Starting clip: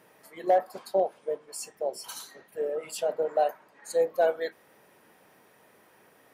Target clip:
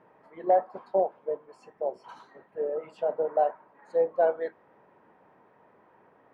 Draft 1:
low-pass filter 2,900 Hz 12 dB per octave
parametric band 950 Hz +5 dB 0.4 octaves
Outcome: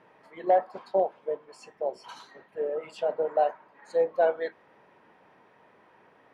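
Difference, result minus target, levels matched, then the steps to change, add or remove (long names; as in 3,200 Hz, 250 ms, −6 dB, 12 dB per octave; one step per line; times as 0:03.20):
4,000 Hz band +11.0 dB
change: low-pass filter 1,400 Hz 12 dB per octave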